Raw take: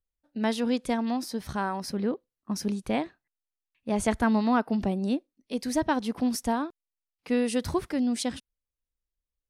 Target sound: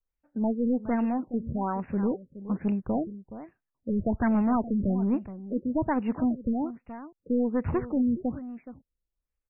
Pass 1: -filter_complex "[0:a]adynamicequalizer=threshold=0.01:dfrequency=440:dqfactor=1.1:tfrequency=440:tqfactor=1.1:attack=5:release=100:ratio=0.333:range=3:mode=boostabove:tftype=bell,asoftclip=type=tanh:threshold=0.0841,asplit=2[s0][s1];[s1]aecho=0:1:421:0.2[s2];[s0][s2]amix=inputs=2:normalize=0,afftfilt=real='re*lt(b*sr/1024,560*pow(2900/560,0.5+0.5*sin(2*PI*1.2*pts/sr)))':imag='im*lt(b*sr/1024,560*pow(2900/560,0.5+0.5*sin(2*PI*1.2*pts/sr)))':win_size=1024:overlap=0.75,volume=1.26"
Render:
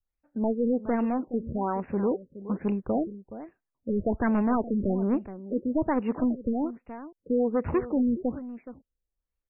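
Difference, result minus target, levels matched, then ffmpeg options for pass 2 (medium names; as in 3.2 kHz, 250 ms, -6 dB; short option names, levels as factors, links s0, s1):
500 Hz band +3.5 dB
-filter_complex "[0:a]adynamicequalizer=threshold=0.01:dfrequency=120:dqfactor=1.1:tfrequency=120:tqfactor=1.1:attack=5:release=100:ratio=0.333:range=3:mode=boostabove:tftype=bell,asoftclip=type=tanh:threshold=0.0841,asplit=2[s0][s1];[s1]aecho=0:1:421:0.2[s2];[s0][s2]amix=inputs=2:normalize=0,afftfilt=real='re*lt(b*sr/1024,560*pow(2900/560,0.5+0.5*sin(2*PI*1.2*pts/sr)))':imag='im*lt(b*sr/1024,560*pow(2900/560,0.5+0.5*sin(2*PI*1.2*pts/sr)))':win_size=1024:overlap=0.75,volume=1.26"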